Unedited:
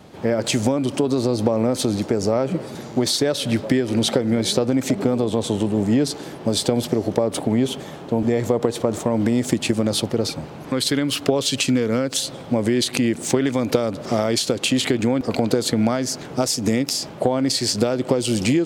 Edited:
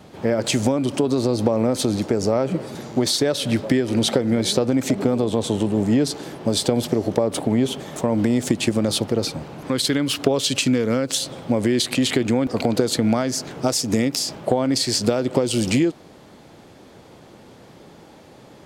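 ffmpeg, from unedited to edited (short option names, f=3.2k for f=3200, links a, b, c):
-filter_complex "[0:a]asplit=3[a][b][c];[a]atrim=end=7.962[d];[b]atrim=start=8.978:end=12.972[e];[c]atrim=start=14.688[f];[d][e]acrossfade=d=0.004:c1=hsin:c2=hsin[g];[g][f]acrossfade=d=0.004:c1=hsin:c2=hsin"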